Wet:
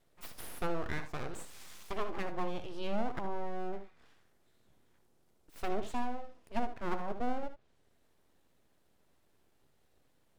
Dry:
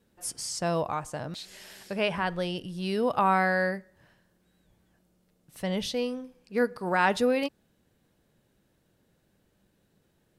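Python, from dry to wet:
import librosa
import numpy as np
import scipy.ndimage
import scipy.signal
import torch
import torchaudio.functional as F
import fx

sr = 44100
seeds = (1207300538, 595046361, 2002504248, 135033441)

y = fx.env_lowpass_down(x, sr, base_hz=320.0, full_db=-22.5)
y = np.abs(y)
y = fx.room_early_taps(y, sr, ms=(61, 76), db=(-14.5, -12.0))
y = y * librosa.db_to_amplitude(-2.0)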